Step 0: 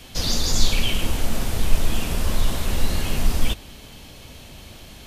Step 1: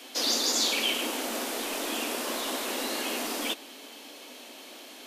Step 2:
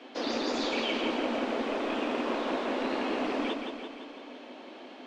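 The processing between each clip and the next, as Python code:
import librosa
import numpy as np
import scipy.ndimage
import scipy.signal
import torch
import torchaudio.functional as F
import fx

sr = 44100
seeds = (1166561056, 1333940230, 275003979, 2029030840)

y1 = scipy.signal.sosfilt(scipy.signal.ellip(4, 1.0, 50, 260.0, 'highpass', fs=sr, output='sos'), x)
y2 = fx.rattle_buzz(y1, sr, strikes_db=-40.0, level_db=-24.0)
y2 = fx.spacing_loss(y2, sr, db_at_10k=39)
y2 = fx.echo_feedback(y2, sr, ms=170, feedback_pct=58, wet_db=-6)
y2 = F.gain(torch.from_numpy(y2), 4.5).numpy()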